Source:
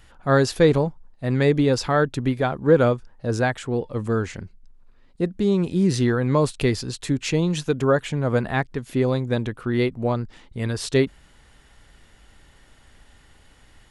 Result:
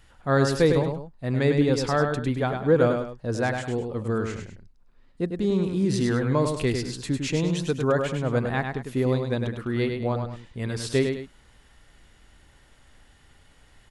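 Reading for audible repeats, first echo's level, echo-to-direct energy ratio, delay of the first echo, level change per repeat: 2, -5.5 dB, -5.0 dB, 102 ms, -9.0 dB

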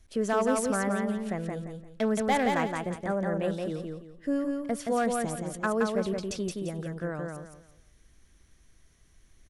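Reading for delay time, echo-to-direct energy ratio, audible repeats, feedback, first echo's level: 172 ms, -3.0 dB, 3, 29%, -3.5 dB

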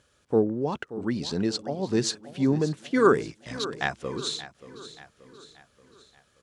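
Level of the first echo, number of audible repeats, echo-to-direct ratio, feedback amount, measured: -15.0 dB, 4, -14.0 dB, 49%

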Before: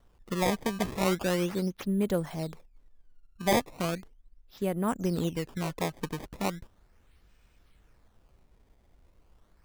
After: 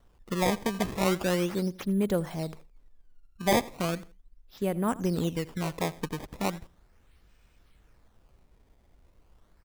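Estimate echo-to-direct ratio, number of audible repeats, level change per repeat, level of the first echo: -19.5 dB, 2, -12.0 dB, -20.0 dB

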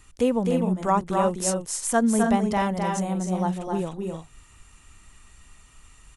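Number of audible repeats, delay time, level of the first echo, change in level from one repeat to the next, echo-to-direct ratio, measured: 2, 259 ms, -4.5 dB, no regular repeats, -3.0 dB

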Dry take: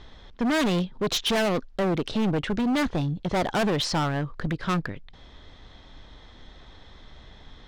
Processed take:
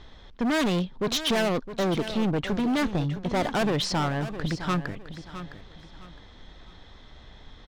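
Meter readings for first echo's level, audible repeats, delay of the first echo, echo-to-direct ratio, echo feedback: -12.0 dB, 3, 661 ms, -11.5 dB, 29%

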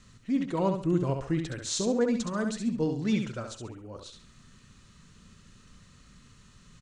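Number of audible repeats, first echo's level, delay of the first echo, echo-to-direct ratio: 3, -6.0 dB, 68 ms, -5.5 dB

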